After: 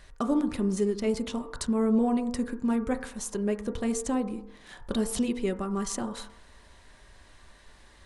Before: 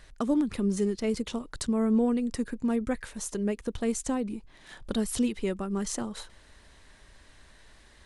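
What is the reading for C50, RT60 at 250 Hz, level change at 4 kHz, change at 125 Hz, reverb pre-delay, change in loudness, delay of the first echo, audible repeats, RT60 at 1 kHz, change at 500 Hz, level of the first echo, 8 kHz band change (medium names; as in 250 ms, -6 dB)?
10.5 dB, 0.70 s, 0.0 dB, 0.0 dB, 4 ms, +0.5 dB, no echo, no echo, 0.70 s, +1.0 dB, no echo, 0.0 dB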